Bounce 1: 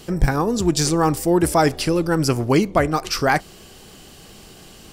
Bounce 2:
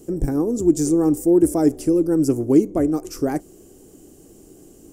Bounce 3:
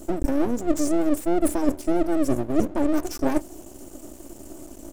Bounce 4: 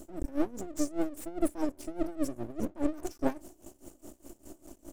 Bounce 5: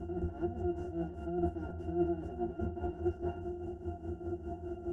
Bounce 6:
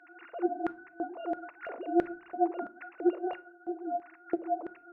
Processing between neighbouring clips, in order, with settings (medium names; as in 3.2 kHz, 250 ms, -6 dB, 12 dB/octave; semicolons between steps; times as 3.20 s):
FFT filter 210 Hz 0 dB, 290 Hz +13 dB, 1 kHz -10 dB, 4.3 kHz -17 dB, 6.7 kHz +2 dB; trim -6 dB
comb 3.4 ms, depth 81%; reverse; compression 6:1, threshold -22 dBFS, peak gain reduction 16 dB; reverse; half-wave rectifier; trim +6.5 dB
logarithmic tremolo 4.9 Hz, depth 20 dB; trim -4.5 dB
spectral levelling over time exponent 0.4; pitch-class resonator F, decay 0.17 s; chorus voices 6, 0.43 Hz, delay 13 ms, depth 1.1 ms; trim +7.5 dB
formants replaced by sine waves; LFO high-pass square 1.5 Hz 510–1700 Hz; reverberation RT60 0.50 s, pre-delay 6 ms, DRR 16.5 dB; trim +7.5 dB